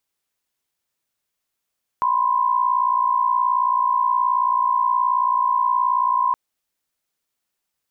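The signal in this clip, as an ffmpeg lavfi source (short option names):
-f lavfi -i "aevalsrc='0.112*(sin(2*PI*987.77*t)+sin(2*PI*1046.5*t))':d=4.32:s=44100"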